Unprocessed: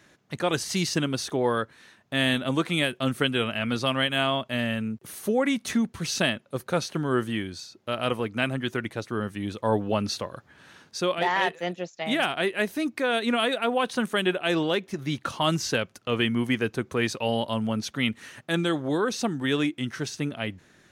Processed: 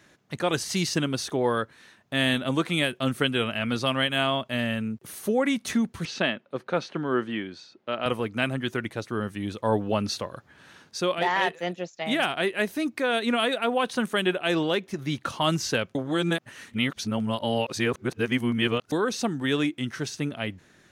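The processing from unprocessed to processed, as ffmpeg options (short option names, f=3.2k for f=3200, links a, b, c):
-filter_complex "[0:a]asettb=1/sr,asplit=3[a][b][c];[a]atrim=end=6.054[d];[b]atrim=start=6.05:end=8.06,asetpts=PTS-STARTPTS,afade=t=in:d=0.004:c=qsin,afade=t=out:st=2.006:d=0.004:c=qsin,highpass=190,lowpass=3.4k[e];[c]atrim=start=8.056[f];[d][e]acrossfade=d=0.004:c1=hsin:c2=qsin[g];[g][f]acrossfade=d=0.004:c1=qsin:c2=hsin,asplit=3[h][i][j];[h]atrim=end=15.952[k];[i]atrim=start=15.948:end=18.922,asetpts=PTS-STARTPTS,areverse[l];[j]atrim=start=18.918[m];[k][l]acrossfade=d=0.004:c1=hsin:c2=hsin[n];[n][m]acrossfade=d=0.004:c1=hsin:c2=hsin"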